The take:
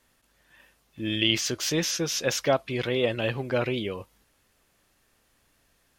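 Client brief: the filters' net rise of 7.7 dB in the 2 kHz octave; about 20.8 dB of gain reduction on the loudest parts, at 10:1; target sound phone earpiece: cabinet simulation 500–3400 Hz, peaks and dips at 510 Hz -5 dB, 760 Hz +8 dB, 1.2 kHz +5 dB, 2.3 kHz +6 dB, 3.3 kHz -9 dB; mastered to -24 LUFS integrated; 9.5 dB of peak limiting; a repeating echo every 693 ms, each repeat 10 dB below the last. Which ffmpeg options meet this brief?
-af "equalizer=f=2000:t=o:g=7,acompressor=threshold=0.0126:ratio=10,alimiter=level_in=2.99:limit=0.0631:level=0:latency=1,volume=0.335,highpass=500,equalizer=f=510:t=q:w=4:g=-5,equalizer=f=760:t=q:w=4:g=8,equalizer=f=1200:t=q:w=4:g=5,equalizer=f=2300:t=q:w=4:g=6,equalizer=f=3300:t=q:w=4:g=-9,lowpass=f=3400:w=0.5412,lowpass=f=3400:w=1.3066,aecho=1:1:693|1386|2079|2772:0.316|0.101|0.0324|0.0104,volume=14.1"

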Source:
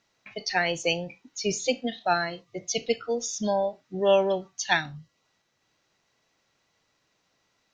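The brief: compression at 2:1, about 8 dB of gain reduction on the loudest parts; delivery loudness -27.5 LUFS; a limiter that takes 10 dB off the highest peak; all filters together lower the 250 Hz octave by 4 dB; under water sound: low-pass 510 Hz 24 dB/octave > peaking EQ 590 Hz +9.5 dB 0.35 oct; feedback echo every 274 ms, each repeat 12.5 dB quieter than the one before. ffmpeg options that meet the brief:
-af "equalizer=f=250:t=o:g=-6,acompressor=threshold=0.0251:ratio=2,alimiter=level_in=1.33:limit=0.0631:level=0:latency=1,volume=0.75,lowpass=f=510:w=0.5412,lowpass=f=510:w=1.3066,equalizer=f=590:t=o:w=0.35:g=9.5,aecho=1:1:274|548|822:0.237|0.0569|0.0137,volume=3.55"

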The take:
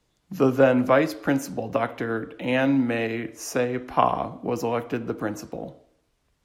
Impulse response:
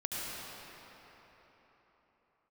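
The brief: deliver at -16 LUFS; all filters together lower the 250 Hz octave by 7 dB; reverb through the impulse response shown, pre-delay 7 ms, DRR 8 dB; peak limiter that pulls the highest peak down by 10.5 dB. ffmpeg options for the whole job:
-filter_complex "[0:a]equalizer=f=250:t=o:g=-8,alimiter=limit=0.168:level=0:latency=1,asplit=2[s0][s1];[1:a]atrim=start_sample=2205,adelay=7[s2];[s1][s2]afir=irnorm=-1:irlink=0,volume=0.224[s3];[s0][s3]amix=inputs=2:normalize=0,volume=4.22"

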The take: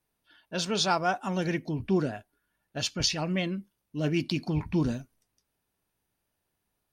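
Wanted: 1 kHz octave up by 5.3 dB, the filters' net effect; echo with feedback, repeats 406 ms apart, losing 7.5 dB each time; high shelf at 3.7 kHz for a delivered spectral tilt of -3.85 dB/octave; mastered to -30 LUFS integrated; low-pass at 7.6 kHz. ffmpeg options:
-af "lowpass=7600,equalizer=f=1000:t=o:g=7,highshelf=f=3700:g=7.5,aecho=1:1:406|812|1218|1624|2030:0.422|0.177|0.0744|0.0312|0.0131,volume=0.708"

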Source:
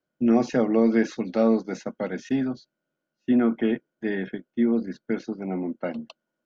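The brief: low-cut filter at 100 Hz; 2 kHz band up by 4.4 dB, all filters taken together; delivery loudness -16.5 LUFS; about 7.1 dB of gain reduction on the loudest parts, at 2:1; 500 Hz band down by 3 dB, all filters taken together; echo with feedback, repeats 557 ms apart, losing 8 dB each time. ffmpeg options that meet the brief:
-af "highpass=100,equalizer=f=500:t=o:g=-4,equalizer=f=2000:t=o:g=5.5,acompressor=threshold=0.0316:ratio=2,aecho=1:1:557|1114|1671|2228|2785:0.398|0.159|0.0637|0.0255|0.0102,volume=5.62"

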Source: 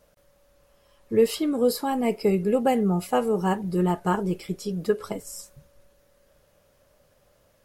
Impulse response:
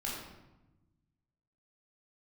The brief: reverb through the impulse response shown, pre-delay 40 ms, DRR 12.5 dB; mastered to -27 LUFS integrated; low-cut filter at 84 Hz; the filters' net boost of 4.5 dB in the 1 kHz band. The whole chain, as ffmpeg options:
-filter_complex "[0:a]highpass=84,equalizer=f=1000:t=o:g=6,asplit=2[s0][s1];[1:a]atrim=start_sample=2205,adelay=40[s2];[s1][s2]afir=irnorm=-1:irlink=0,volume=0.168[s3];[s0][s3]amix=inputs=2:normalize=0,volume=0.668"

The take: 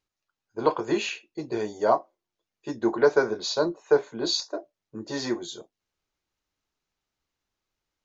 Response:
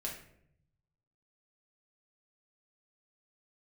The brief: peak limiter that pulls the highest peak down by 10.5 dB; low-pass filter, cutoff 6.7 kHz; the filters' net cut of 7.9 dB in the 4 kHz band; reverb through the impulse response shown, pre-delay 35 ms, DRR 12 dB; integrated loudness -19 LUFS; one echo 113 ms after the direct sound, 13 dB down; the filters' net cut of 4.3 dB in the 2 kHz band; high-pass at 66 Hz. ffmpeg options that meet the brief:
-filter_complex "[0:a]highpass=66,lowpass=6700,equalizer=f=2000:t=o:g=-5,equalizer=f=4000:t=o:g=-7.5,alimiter=limit=0.112:level=0:latency=1,aecho=1:1:113:0.224,asplit=2[s0][s1];[1:a]atrim=start_sample=2205,adelay=35[s2];[s1][s2]afir=irnorm=-1:irlink=0,volume=0.237[s3];[s0][s3]amix=inputs=2:normalize=0,volume=4.22"

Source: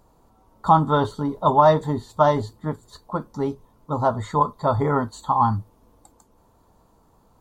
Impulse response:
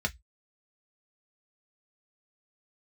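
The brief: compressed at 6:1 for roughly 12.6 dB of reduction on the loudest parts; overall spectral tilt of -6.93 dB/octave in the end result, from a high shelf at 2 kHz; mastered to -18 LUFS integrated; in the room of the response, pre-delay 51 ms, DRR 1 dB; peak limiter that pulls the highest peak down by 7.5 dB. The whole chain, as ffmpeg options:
-filter_complex "[0:a]highshelf=f=2000:g=-7,acompressor=threshold=0.0562:ratio=6,alimiter=limit=0.075:level=0:latency=1,asplit=2[s0][s1];[1:a]atrim=start_sample=2205,adelay=51[s2];[s1][s2]afir=irnorm=-1:irlink=0,volume=0.422[s3];[s0][s3]amix=inputs=2:normalize=0,volume=4.22"

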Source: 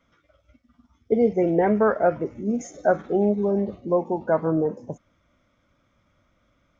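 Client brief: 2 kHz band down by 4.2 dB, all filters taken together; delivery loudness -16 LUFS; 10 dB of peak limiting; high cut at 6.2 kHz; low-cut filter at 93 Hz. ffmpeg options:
-af "highpass=93,lowpass=6200,equalizer=f=2000:t=o:g=-6.5,volume=4.22,alimiter=limit=0.501:level=0:latency=1"

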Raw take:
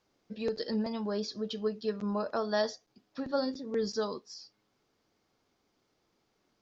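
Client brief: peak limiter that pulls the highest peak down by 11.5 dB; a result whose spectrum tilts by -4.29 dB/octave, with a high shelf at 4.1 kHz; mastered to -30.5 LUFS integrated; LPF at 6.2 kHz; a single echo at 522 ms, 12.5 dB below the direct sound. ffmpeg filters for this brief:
-af "lowpass=6200,highshelf=f=4100:g=3,alimiter=level_in=1.58:limit=0.0631:level=0:latency=1,volume=0.631,aecho=1:1:522:0.237,volume=2.37"

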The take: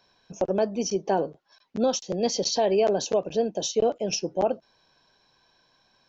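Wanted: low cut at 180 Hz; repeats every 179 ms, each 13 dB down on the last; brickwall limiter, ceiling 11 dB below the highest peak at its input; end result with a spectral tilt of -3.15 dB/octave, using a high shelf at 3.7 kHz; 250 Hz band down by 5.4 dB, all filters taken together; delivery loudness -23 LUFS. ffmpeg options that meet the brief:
-af "highpass=180,equalizer=f=250:t=o:g=-5.5,highshelf=f=3700:g=-6.5,alimiter=level_in=1.12:limit=0.0631:level=0:latency=1,volume=0.891,aecho=1:1:179|358|537:0.224|0.0493|0.0108,volume=3.76"

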